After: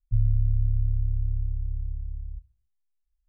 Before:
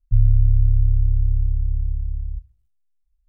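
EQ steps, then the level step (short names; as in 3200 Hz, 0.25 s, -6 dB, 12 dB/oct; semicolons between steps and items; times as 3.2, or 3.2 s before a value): dynamic EQ 120 Hz, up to +7 dB, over -37 dBFS, Q 5.4; -8.5 dB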